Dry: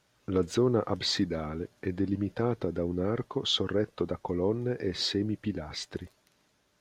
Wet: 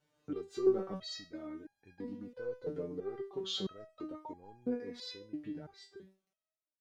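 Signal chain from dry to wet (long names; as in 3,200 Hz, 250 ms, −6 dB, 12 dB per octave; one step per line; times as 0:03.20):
fade-out on the ending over 1.90 s
parametric band 350 Hz +7 dB 2.7 octaves
in parallel at −8.5 dB: gain into a clipping stage and back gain 16.5 dB
on the sum: dynamic equaliser 5,000 Hz, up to +5 dB, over −39 dBFS, Q 1.1
step-sequenced resonator 3 Hz 150–810 Hz
level −3 dB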